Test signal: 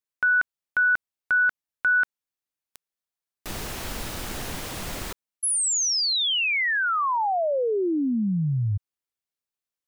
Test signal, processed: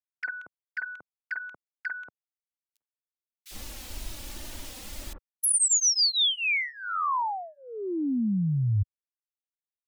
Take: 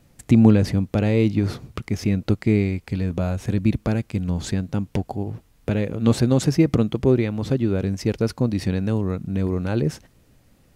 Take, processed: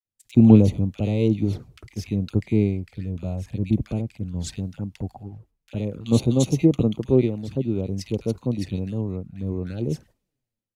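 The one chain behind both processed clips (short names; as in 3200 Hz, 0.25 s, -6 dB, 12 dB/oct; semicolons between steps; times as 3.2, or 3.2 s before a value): gate -48 dBFS, range -7 dB; envelope flanger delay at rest 9.7 ms, full sweep at -18.5 dBFS; bands offset in time highs, lows 50 ms, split 1400 Hz; three-band expander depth 70%; gain -2.5 dB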